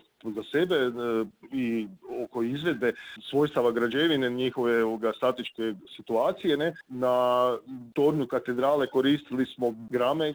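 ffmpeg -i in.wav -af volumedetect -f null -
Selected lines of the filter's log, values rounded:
mean_volume: -27.2 dB
max_volume: -12.3 dB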